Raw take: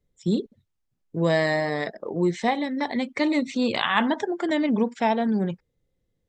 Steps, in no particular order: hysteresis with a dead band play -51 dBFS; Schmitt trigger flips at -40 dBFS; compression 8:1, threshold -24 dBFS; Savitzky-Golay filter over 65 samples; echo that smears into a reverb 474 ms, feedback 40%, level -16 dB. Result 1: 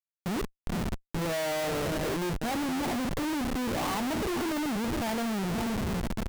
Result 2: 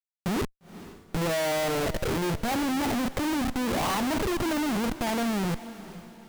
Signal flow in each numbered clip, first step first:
Savitzky-Golay filter > hysteresis with a dead band > echo that smears into a reverb > compression > Schmitt trigger; Savitzky-Golay filter > hysteresis with a dead band > Schmitt trigger > echo that smears into a reverb > compression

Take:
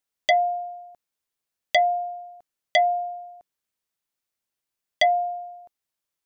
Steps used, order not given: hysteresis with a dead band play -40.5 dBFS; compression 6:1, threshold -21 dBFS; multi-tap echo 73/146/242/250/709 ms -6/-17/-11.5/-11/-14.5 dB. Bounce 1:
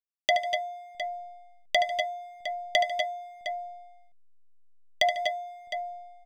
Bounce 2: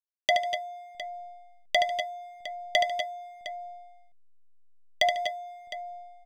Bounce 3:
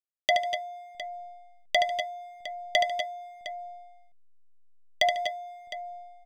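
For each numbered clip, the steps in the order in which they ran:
hysteresis with a dead band > multi-tap echo > compression; compression > hysteresis with a dead band > multi-tap echo; hysteresis with a dead band > compression > multi-tap echo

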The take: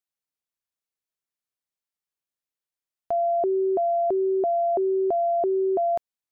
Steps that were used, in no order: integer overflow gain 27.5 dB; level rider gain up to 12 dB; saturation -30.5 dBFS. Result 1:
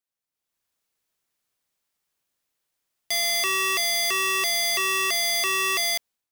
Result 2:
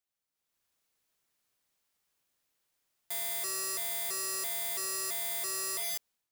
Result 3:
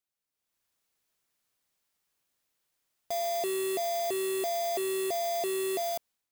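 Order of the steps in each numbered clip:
integer overflow > saturation > level rider; level rider > integer overflow > saturation; saturation > level rider > integer overflow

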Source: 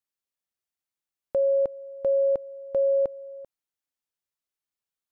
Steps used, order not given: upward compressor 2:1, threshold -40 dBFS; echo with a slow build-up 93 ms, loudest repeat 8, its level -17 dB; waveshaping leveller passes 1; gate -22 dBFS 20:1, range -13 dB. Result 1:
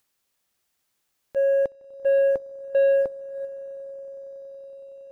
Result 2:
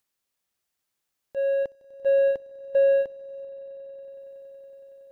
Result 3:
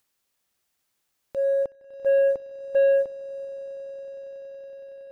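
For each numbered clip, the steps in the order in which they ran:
echo with a slow build-up > waveshaping leveller > gate > upward compressor; waveshaping leveller > upward compressor > echo with a slow build-up > gate; echo with a slow build-up > gate > upward compressor > waveshaping leveller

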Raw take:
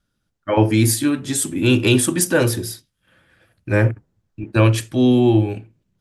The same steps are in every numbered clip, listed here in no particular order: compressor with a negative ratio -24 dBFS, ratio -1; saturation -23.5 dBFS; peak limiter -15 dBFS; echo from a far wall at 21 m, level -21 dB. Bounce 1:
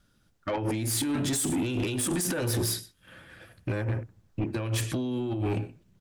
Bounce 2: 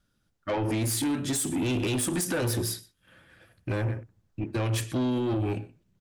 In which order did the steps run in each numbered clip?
echo from a far wall > compressor with a negative ratio > peak limiter > saturation; echo from a far wall > peak limiter > saturation > compressor with a negative ratio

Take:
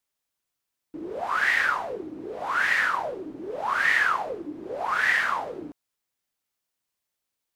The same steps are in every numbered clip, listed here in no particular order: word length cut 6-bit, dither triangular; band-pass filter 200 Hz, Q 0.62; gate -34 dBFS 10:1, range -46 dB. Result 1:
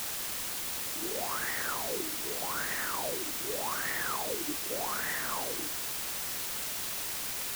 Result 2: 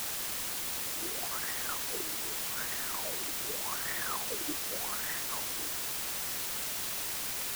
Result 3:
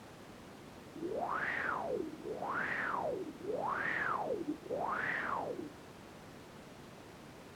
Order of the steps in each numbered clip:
gate > band-pass filter > word length cut; band-pass filter > gate > word length cut; gate > word length cut > band-pass filter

